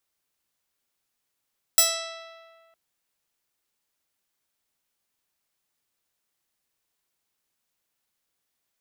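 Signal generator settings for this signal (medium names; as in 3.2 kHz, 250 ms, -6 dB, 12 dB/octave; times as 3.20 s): plucked string E5, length 0.96 s, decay 1.86 s, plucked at 0.3, bright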